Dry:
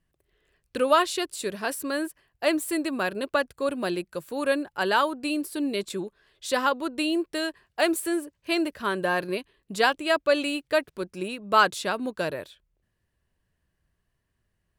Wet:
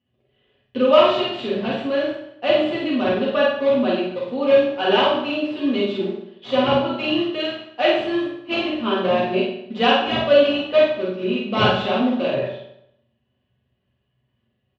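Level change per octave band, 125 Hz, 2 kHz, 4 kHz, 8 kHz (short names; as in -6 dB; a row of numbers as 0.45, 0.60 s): +11.5 dB, +2.0 dB, +8.0 dB, under -15 dB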